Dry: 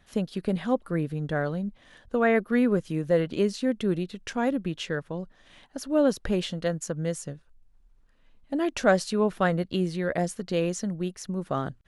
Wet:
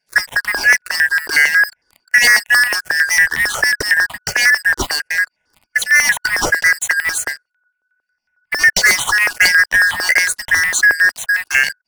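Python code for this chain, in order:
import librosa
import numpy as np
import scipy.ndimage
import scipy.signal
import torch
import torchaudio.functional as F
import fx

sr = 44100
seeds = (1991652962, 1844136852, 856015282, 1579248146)

y = fx.band_shuffle(x, sr, order='3142')
y = fx.dynamic_eq(y, sr, hz=950.0, q=3.8, threshold_db=-46.0, ratio=4.0, max_db=5)
y = fx.leveller(y, sr, passes=5)
y = fx.phaser_held(y, sr, hz=11.0, low_hz=340.0, high_hz=1600.0)
y = F.gain(torch.from_numpy(y), 3.0).numpy()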